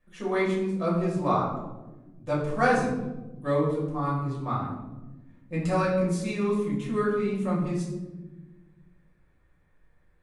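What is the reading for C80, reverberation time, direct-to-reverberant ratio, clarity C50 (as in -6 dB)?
5.5 dB, 1.1 s, -6.5 dB, 3.0 dB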